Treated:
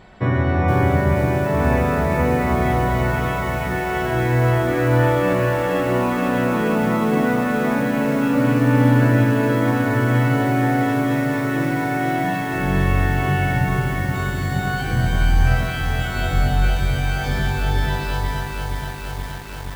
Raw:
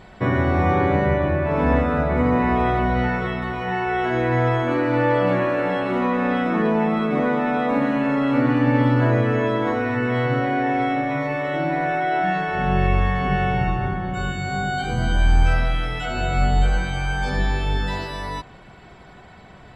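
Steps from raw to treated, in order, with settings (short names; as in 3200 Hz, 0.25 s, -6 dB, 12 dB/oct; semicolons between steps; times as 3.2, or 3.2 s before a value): dynamic EQ 110 Hz, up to +7 dB, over -37 dBFS, Q 1.9; on a send: narrowing echo 0.225 s, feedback 45%, band-pass 1800 Hz, level -7 dB; on the sum: lo-fi delay 0.475 s, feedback 80%, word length 6-bit, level -5.5 dB; gain -1.5 dB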